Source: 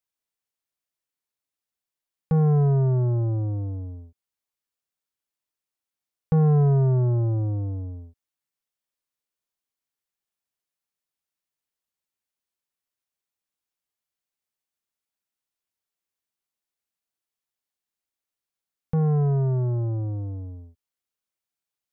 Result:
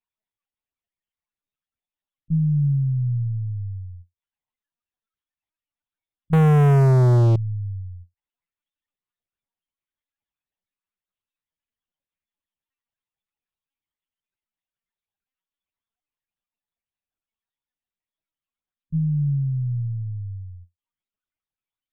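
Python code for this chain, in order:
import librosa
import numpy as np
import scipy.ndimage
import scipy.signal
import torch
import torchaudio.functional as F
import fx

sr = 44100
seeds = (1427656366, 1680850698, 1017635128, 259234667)

y = fx.spec_expand(x, sr, power=3.9)
y = fx.lpc_vocoder(y, sr, seeds[0], excitation='pitch_kept', order=8)
y = fx.leveller(y, sr, passes=5, at=(6.33, 7.36))
y = fx.end_taper(y, sr, db_per_s=400.0)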